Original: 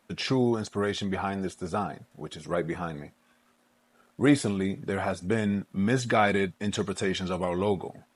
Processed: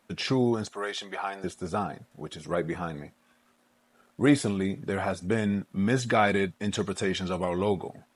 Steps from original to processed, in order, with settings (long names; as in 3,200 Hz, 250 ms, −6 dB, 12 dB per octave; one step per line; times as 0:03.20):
0:00.72–0:01.44: high-pass filter 550 Hz 12 dB per octave